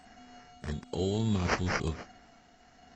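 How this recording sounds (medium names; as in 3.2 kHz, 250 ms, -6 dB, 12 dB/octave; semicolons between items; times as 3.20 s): aliases and images of a low sample rate 3.6 kHz, jitter 0%; tremolo triangle 0.68 Hz, depth 60%; a quantiser's noise floor 12-bit, dither triangular; AAC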